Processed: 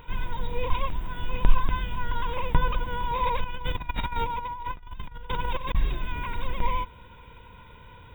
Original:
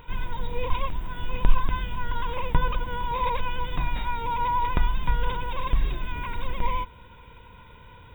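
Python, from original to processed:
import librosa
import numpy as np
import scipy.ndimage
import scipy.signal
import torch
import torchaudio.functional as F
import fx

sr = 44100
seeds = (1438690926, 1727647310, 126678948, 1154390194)

y = fx.over_compress(x, sr, threshold_db=-29.0, ratio=-0.5, at=(3.44, 5.75))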